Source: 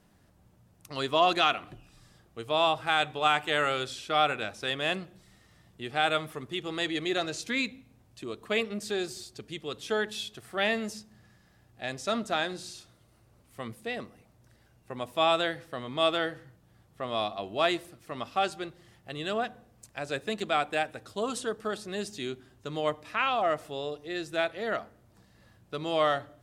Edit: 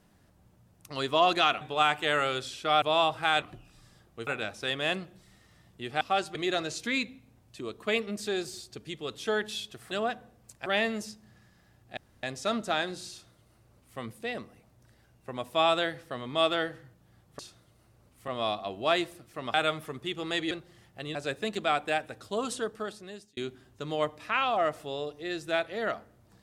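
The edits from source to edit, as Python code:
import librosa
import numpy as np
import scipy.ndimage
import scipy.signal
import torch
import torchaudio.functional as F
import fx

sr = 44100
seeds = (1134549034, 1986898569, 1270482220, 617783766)

y = fx.edit(x, sr, fx.swap(start_s=1.61, length_s=0.85, other_s=3.06, other_length_s=1.21),
    fx.swap(start_s=6.01, length_s=0.97, other_s=18.27, other_length_s=0.34),
    fx.insert_room_tone(at_s=11.85, length_s=0.26),
    fx.duplicate(start_s=12.72, length_s=0.89, to_s=17.01),
    fx.move(start_s=19.25, length_s=0.75, to_s=10.54),
    fx.fade_out_span(start_s=21.46, length_s=0.76), tone=tone)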